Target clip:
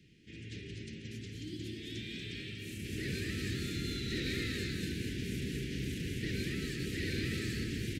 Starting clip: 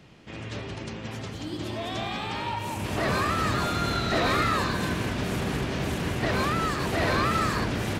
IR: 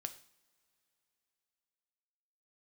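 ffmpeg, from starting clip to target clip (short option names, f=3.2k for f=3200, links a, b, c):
-filter_complex "[0:a]asuperstop=centerf=880:order=8:qfactor=0.61,asplit=2[a][b];[b]aecho=0:1:238:0.501[c];[a][c]amix=inputs=2:normalize=0,volume=-9dB"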